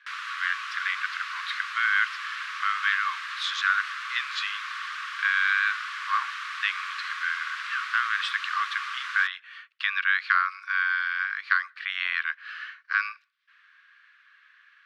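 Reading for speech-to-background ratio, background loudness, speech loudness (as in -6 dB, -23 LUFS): 6.0 dB, -33.5 LUFS, -27.5 LUFS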